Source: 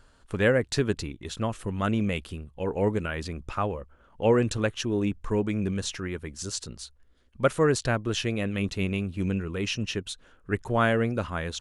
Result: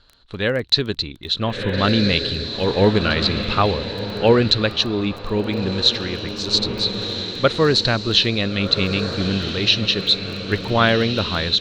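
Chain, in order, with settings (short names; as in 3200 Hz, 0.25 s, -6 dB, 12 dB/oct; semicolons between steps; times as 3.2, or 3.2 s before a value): synth low-pass 4000 Hz, resonance Q 11; diffused feedback echo 1.369 s, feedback 52%, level -9 dB; AGC gain up to 11.5 dB; crackle 10/s -27 dBFS; gain -1 dB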